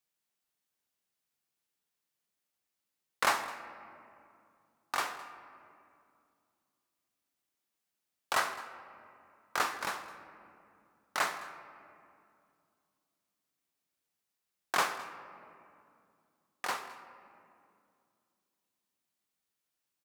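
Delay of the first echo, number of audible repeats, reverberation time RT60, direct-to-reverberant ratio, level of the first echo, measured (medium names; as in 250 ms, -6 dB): 211 ms, 1, 2.4 s, 8.0 dB, -19.5 dB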